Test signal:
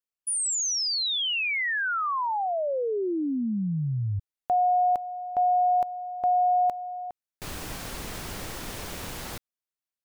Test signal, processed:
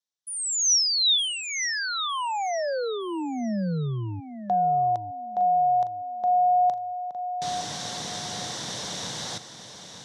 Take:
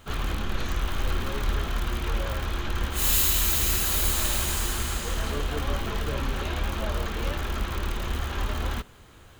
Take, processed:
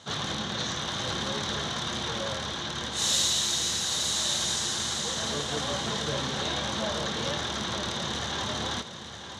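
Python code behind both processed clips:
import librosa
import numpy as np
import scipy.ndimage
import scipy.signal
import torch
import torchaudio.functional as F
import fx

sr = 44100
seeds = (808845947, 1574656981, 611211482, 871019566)

p1 = fx.rider(x, sr, range_db=3, speed_s=2.0)
p2 = fx.cabinet(p1, sr, low_hz=120.0, low_slope=24, high_hz=8400.0, hz=(270.0, 380.0, 1300.0, 2500.0, 3700.0, 5800.0), db=(-5, -6, -5, -9, 10, 9))
y = p2 + fx.echo_feedback(p2, sr, ms=910, feedback_pct=27, wet_db=-10.0, dry=0)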